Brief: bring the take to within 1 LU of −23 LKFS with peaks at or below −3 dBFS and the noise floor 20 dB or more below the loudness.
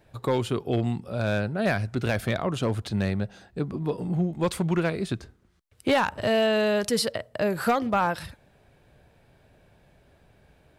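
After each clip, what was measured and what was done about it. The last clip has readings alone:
share of clipped samples 0.4%; peaks flattened at −15.5 dBFS; integrated loudness −26.5 LKFS; sample peak −15.5 dBFS; target loudness −23.0 LKFS
→ clipped peaks rebuilt −15.5 dBFS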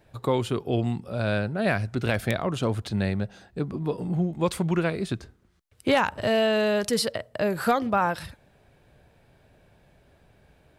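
share of clipped samples 0.0%; integrated loudness −26.5 LKFS; sample peak −7.0 dBFS; target loudness −23.0 LKFS
→ level +3.5 dB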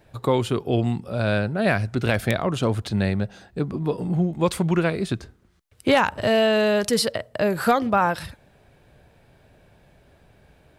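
integrated loudness −23.0 LKFS; sample peak −3.5 dBFS; background noise floor −58 dBFS

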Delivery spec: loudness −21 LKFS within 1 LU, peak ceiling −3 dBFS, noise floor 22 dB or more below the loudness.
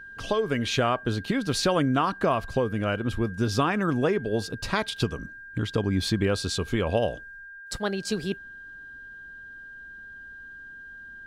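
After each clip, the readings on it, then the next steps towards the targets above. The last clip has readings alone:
interfering tone 1,600 Hz; level of the tone −41 dBFS; integrated loudness −27.0 LKFS; sample peak −10.0 dBFS; target loudness −21.0 LKFS
→ notch filter 1,600 Hz, Q 30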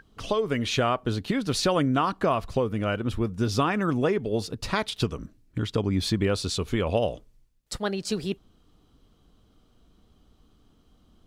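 interfering tone none found; integrated loudness −27.0 LKFS; sample peak −10.5 dBFS; target loudness −21.0 LKFS
→ level +6 dB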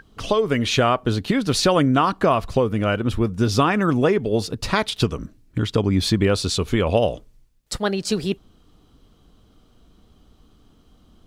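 integrated loudness −21.0 LKFS; sample peak −4.5 dBFS; background noise floor −56 dBFS

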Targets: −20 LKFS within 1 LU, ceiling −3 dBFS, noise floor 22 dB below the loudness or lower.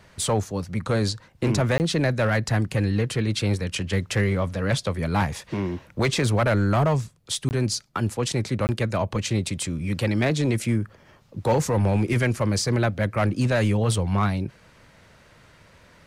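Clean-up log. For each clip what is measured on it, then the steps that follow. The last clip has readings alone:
share of clipped samples 1.2%; peaks flattened at −15.0 dBFS; number of dropouts 3; longest dropout 19 ms; integrated loudness −24.5 LKFS; sample peak −15.0 dBFS; target loudness −20.0 LKFS
→ clipped peaks rebuilt −15 dBFS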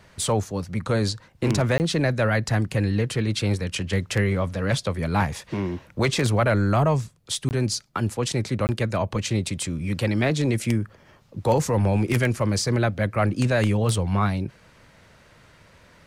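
share of clipped samples 0.0%; number of dropouts 3; longest dropout 19 ms
→ repair the gap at 0:01.78/0:07.49/0:08.67, 19 ms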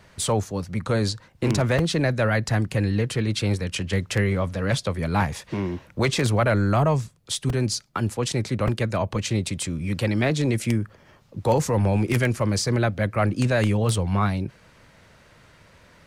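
number of dropouts 0; integrated loudness −24.0 LKFS; sample peak −6.0 dBFS; target loudness −20.0 LKFS
→ level +4 dB
brickwall limiter −3 dBFS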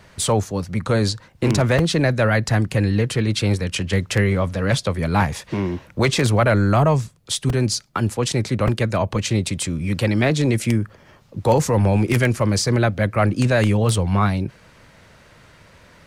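integrated loudness −20.0 LKFS; sample peak −3.0 dBFS; background noise floor −51 dBFS

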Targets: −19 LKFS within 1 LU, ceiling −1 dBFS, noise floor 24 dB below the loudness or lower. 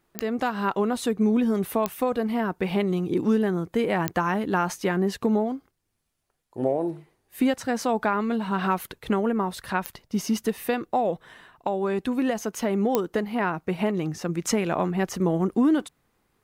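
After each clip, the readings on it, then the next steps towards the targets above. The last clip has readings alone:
number of clicks 5; integrated loudness −26.0 LKFS; sample peak −7.0 dBFS; target loudness −19.0 LKFS
→ click removal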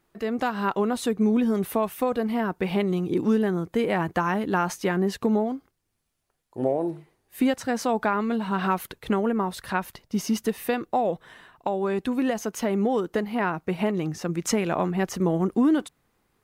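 number of clicks 0; integrated loudness −26.0 LKFS; sample peak −11.5 dBFS; target loudness −19.0 LKFS
→ level +7 dB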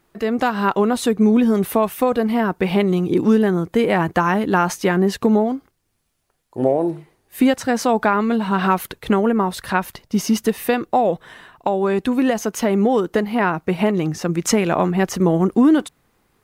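integrated loudness −19.0 LKFS; sample peak −4.5 dBFS; background noise floor −66 dBFS

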